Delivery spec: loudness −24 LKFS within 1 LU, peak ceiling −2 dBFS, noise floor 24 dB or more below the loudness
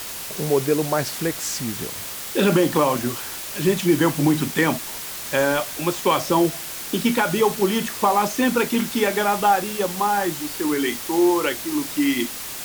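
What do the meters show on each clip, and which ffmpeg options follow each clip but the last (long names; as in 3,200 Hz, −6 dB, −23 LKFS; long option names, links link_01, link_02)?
background noise floor −33 dBFS; target noise floor −46 dBFS; integrated loudness −21.5 LKFS; sample peak −7.0 dBFS; target loudness −24.0 LKFS
→ -af "afftdn=noise_reduction=13:noise_floor=-33"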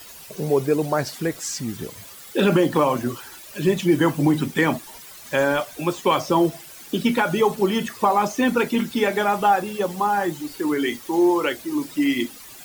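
background noise floor −42 dBFS; target noise floor −46 dBFS
→ -af "afftdn=noise_reduction=6:noise_floor=-42"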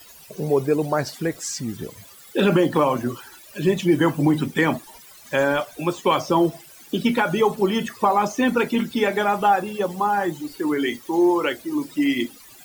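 background noise floor −46 dBFS; integrated loudness −22.0 LKFS; sample peak −7.5 dBFS; target loudness −24.0 LKFS
→ -af "volume=-2dB"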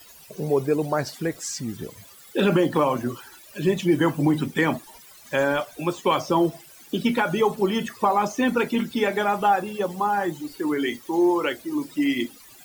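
integrated loudness −24.0 LKFS; sample peak −9.5 dBFS; background noise floor −48 dBFS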